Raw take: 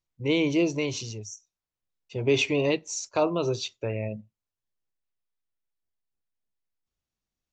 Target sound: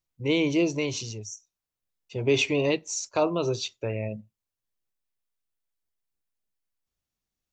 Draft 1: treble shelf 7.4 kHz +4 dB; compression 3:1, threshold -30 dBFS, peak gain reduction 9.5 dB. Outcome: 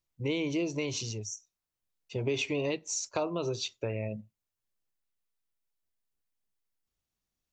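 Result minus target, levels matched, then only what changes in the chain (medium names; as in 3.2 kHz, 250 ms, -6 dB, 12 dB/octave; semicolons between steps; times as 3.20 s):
compression: peak gain reduction +9.5 dB
remove: compression 3:1, threshold -30 dBFS, peak gain reduction 9.5 dB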